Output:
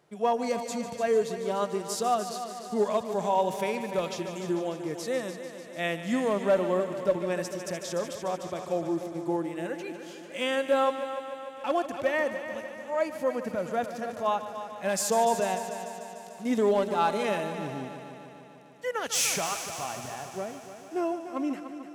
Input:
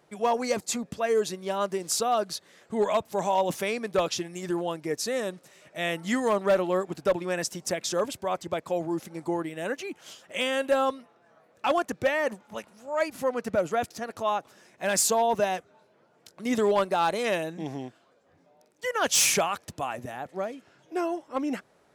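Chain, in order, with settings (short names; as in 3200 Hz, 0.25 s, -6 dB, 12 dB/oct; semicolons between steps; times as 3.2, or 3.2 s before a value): multi-head echo 0.148 s, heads first and second, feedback 64%, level -13.5 dB; harmonic-percussive split percussive -10 dB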